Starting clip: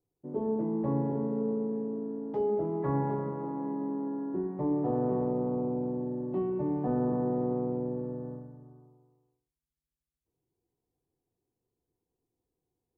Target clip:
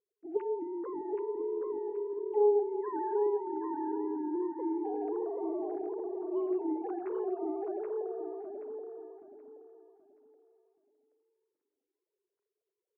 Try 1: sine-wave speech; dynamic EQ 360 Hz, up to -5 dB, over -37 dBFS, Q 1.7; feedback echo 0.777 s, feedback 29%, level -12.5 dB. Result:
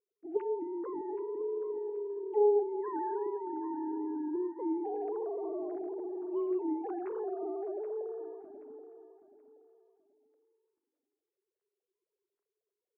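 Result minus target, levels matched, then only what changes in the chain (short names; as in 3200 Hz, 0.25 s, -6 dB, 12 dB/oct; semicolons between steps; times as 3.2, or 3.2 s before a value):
echo-to-direct -8 dB
change: feedback echo 0.777 s, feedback 29%, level -4.5 dB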